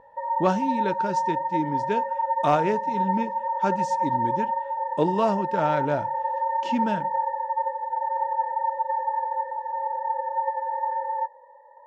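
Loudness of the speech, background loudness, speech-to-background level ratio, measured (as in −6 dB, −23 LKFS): −28.0 LKFS, −27.0 LKFS, −1.0 dB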